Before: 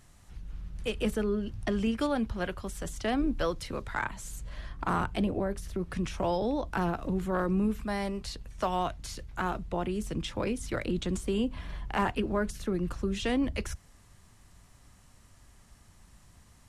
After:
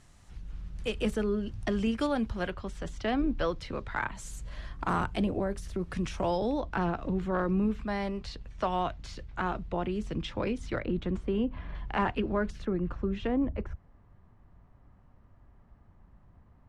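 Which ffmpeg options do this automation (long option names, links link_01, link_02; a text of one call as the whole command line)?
ffmpeg -i in.wav -af "asetnsamples=nb_out_samples=441:pad=0,asendcmd='2.5 lowpass f 4300;4.15 lowpass f 9200;6.6 lowpass f 4200;10.79 lowpass f 2100;11.75 lowpass f 3600;12.65 lowpass f 2000;13.27 lowpass f 1100',lowpass=8800" out.wav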